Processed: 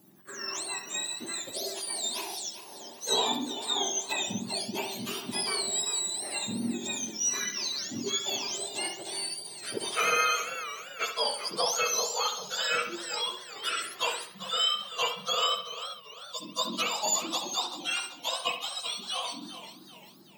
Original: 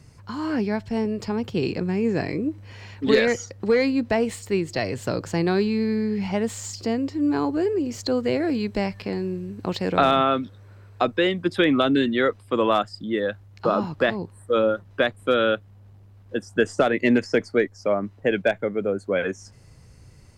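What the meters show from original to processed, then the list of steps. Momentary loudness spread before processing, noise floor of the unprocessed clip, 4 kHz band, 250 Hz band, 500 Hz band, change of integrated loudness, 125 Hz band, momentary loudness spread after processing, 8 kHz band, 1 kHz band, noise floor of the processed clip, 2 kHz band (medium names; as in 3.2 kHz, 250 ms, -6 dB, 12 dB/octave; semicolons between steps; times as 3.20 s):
9 LU, -50 dBFS, +5.0 dB, -17.5 dB, -15.5 dB, -6.5 dB, -18.5 dB, 10 LU, +12.0 dB, -5.5 dB, -49 dBFS, -6.0 dB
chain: spectrum inverted on a logarithmic axis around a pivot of 1.3 kHz; bucket-brigade echo 67 ms, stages 2048, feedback 42%, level -8 dB; modulated delay 391 ms, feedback 43%, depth 145 cents, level -11.5 dB; trim -5 dB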